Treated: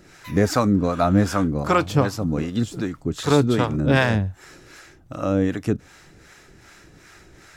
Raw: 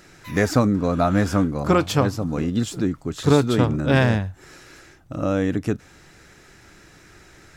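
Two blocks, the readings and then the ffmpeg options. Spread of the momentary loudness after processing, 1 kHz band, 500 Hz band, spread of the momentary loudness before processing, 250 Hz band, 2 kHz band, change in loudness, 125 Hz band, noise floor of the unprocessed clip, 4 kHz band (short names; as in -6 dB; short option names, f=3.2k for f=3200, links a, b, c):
9 LU, +1.5 dB, -0.5 dB, 9 LU, 0.0 dB, +0.5 dB, 0.0 dB, -0.5 dB, -51 dBFS, 0.0 dB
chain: -filter_complex "[0:a]acrossover=split=560[a][b];[a]aeval=exprs='val(0)*(1-0.7/2+0.7/2*cos(2*PI*2.6*n/s))':c=same[c];[b]aeval=exprs='val(0)*(1-0.7/2-0.7/2*cos(2*PI*2.6*n/s))':c=same[d];[c][d]amix=inputs=2:normalize=0,volume=3.5dB"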